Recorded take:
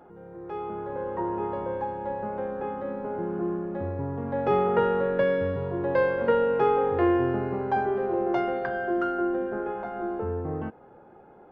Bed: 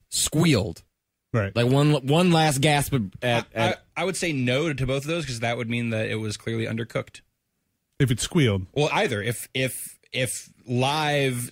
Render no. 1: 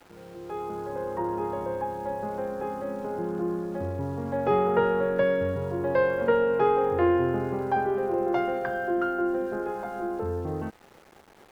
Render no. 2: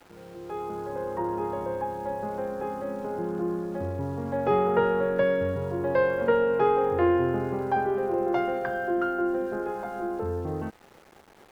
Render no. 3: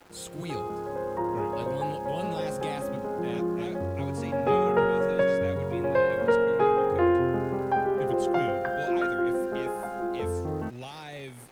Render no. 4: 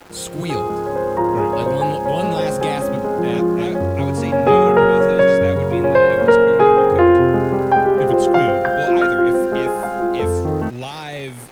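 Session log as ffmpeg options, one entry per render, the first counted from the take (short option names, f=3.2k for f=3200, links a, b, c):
-af "aeval=exprs='val(0)*gte(abs(val(0)),0.00376)':c=same"
-af anull
-filter_complex "[1:a]volume=-18dB[a];[0:a][a]amix=inputs=2:normalize=0"
-af "volume=11.5dB,alimiter=limit=-2dB:level=0:latency=1"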